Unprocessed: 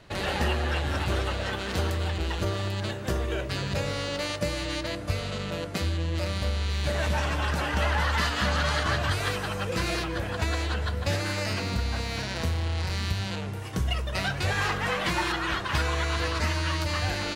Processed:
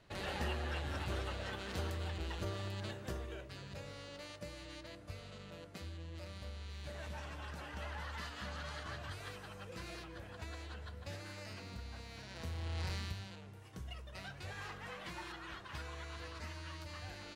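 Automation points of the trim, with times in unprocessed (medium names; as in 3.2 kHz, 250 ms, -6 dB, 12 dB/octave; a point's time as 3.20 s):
2.97 s -12 dB
3.52 s -19 dB
12.22 s -19 dB
12.87 s -9 dB
13.36 s -19.5 dB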